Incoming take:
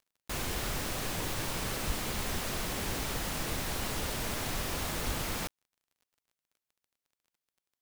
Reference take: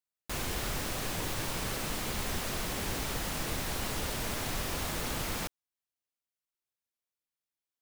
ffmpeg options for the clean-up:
-filter_complex "[0:a]adeclick=t=4,asplit=3[a][b][c];[a]afade=t=out:st=1.86:d=0.02[d];[b]highpass=f=140:w=0.5412,highpass=f=140:w=1.3066,afade=t=in:st=1.86:d=0.02,afade=t=out:st=1.98:d=0.02[e];[c]afade=t=in:st=1.98:d=0.02[f];[d][e][f]amix=inputs=3:normalize=0,asplit=3[g][h][i];[g]afade=t=out:st=5.05:d=0.02[j];[h]highpass=f=140:w=0.5412,highpass=f=140:w=1.3066,afade=t=in:st=5.05:d=0.02,afade=t=out:st=5.17:d=0.02[k];[i]afade=t=in:st=5.17:d=0.02[l];[j][k][l]amix=inputs=3:normalize=0"

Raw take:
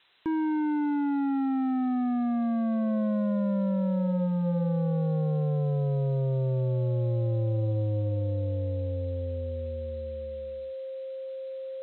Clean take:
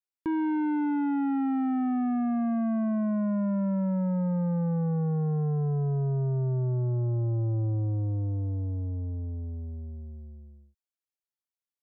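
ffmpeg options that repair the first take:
-af "bandreject=f=530:w=30,afftdn=nr=30:nf=-37"

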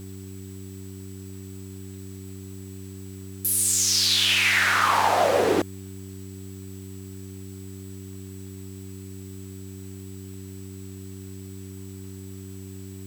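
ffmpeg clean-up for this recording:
-af "adeclick=t=4,bandreject=f=95.9:t=h:w=4,bandreject=f=191.8:t=h:w=4,bandreject=f=287.7:t=h:w=4,bandreject=f=383.6:t=h:w=4,bandreject=f=7.8k:w=30,afwtdn=0.0022"

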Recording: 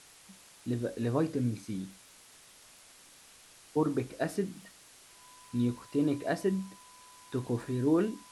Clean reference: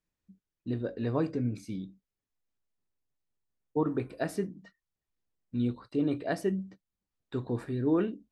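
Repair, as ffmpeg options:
-af "adeclick=t=4,bandreject=f=1k:w=30,afwtdn=0.002"

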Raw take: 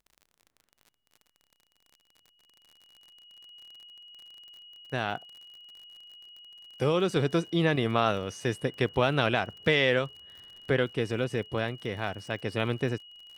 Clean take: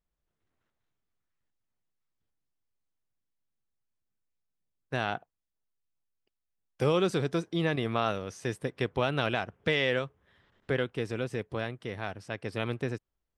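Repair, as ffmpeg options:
-af "adeclick=t=4,bandreject=f=2.9k:w=30,asetnsamples=n=441:p=0,asendcmd='7.16 volume volume -3.5dB',volume=0dB"

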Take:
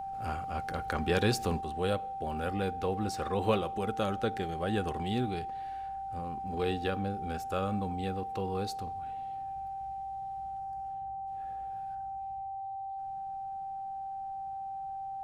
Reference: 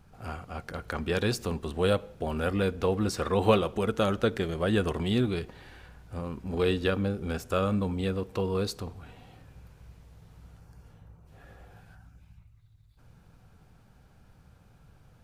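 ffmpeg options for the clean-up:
-af "bandreject=f=780:w=30,asetnsamples=n=441:p=0,asendcmd='1.61 volume volume 6dB',volume=0dB"

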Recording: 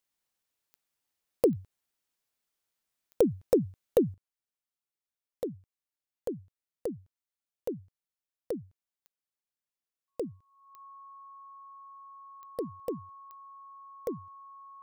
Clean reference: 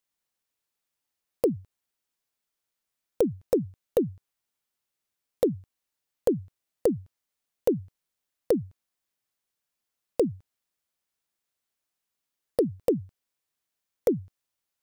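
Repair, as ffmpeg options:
-af "adeclick=t=4,bandreject=f=1.1k:w=30,asetnsamples=n=441:p=0,asendcmd='4.14 volume volume 11dB',volume=0dB"

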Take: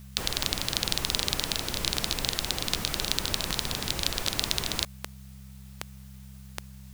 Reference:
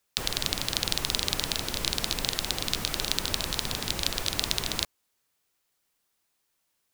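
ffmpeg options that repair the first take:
-af "adeclick=t=4,bandreject=f=65.8:t=h:w=4,bandreject=f=131.6:t=h:w=4,bandreject=f=197.4:t=h:w=4,agate=range=-21dB:threshold=-38dB"

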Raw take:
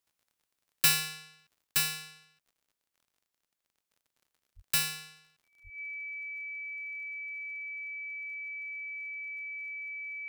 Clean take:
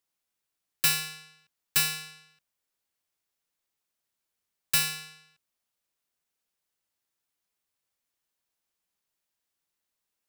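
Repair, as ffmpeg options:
-filter_complex "[0:a]adeclick=t=4,bandreject=f=2.3k:w=30,asplit=3[a][b][c];[a]afade=t=out:st=4.55:d=0.02[d];[b]highpass=f=140:w=0.5412,highpass=f=140:w=1.3066,afade=t=in:st=4.55:d=0.02,afade=t=out:st=4.67:d=0.02[e];[c]afade=t=in:st=4.67:d=0.02[f];[d][e][f]amix=inputs=3:normalize=0,asplit=3[g][h][i];[g]afade=t=out:st=5.63:d=0.02[j];[h]highpass=f=140:w=0.5412,highpass=f=140:w=1.3066,afade=t=in:st=5.63:d=0.02,afade=t=out:st=5.75:d=0.02[k];[i]afade=t=in:st=5.75:d=0.02[l];[j][k][l]amix=inputs=3:normalize=0,asetnsamples=n=441:p=0,asendcmd='1.67 volume volume 3.5dB',volume=0dB"

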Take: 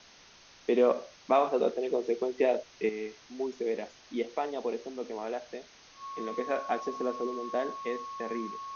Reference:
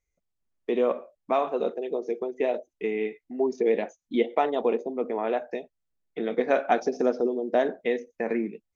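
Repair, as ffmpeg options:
-af "bandreject=f=1.1k:w=30,afwtdn=0.0028,asetnsamples=n=441:p=0,asendcmd='2.89 volume volume 8.5dB',volume=0dB"

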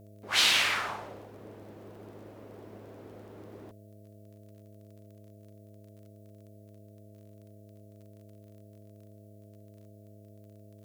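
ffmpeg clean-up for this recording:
-af "adeclick=t=4,bandreject=f=103.9:t=h:w=4,bandreject=f=207.8:t=h:w=4,bandreject=f=311.7:t=h:w=4,bandreject=f=415.6:t=h:w=4,bandreject=f=519.5:t=h:w=4,bandreject=f=623.4:t=h:w=4,bandreject=f=660:w=30,agate=range=-21dB:threshold=-45dB"

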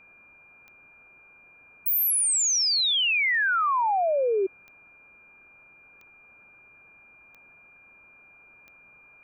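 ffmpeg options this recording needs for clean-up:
-af "adeclick=t=4,bandreject=f=2.4k:w=30,afwtdn=0.002"

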